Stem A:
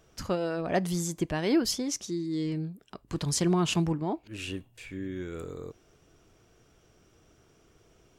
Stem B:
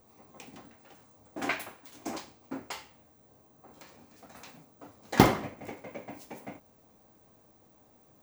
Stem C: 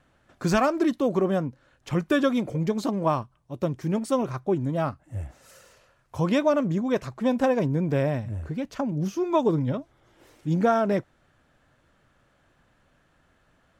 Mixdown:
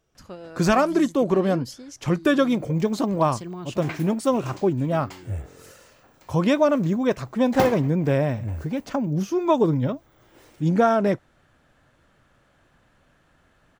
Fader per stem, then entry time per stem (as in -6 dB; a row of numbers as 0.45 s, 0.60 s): -10.0 dB, -4.0 dB, +3.0 dB; 0.00 s, 2.40 s, 0.15 s